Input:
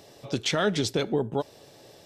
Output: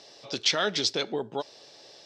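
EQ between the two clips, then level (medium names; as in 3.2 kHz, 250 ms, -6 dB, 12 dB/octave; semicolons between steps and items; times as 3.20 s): high-pass 570 Hz 6 dB/octave; resonant low-pass 5.1 kHz, resonance Q 2.4; 0.0 dB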